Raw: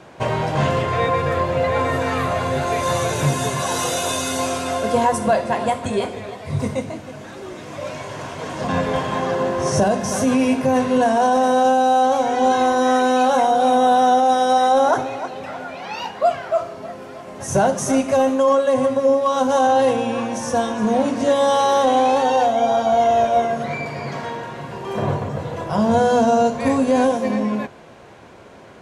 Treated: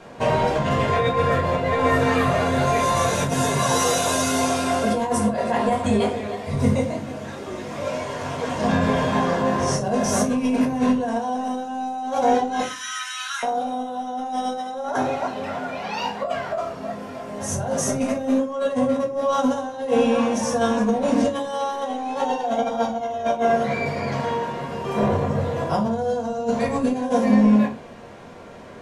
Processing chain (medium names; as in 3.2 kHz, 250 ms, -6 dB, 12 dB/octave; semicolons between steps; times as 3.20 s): 12.60–13.43 s: steep high-pass 1.3 kHz 48 dB/octave; compressor with a negative ratio -20 dBFS, ratio -0.5; simulated room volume 150 m³, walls furnished, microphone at 1.7 m; trim -5 dB